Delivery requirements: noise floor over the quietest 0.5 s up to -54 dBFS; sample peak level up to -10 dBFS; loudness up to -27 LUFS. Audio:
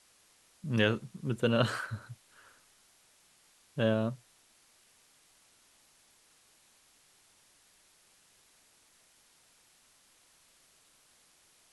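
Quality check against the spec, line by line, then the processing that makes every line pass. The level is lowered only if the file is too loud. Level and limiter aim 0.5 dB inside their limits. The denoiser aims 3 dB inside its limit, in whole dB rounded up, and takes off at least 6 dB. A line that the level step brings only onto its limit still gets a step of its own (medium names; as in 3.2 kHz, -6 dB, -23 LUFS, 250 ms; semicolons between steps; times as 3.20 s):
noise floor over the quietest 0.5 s -65 dBFS: pass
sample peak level -11.5 dBFS: pass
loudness -32.0 LUFS: pass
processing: none needed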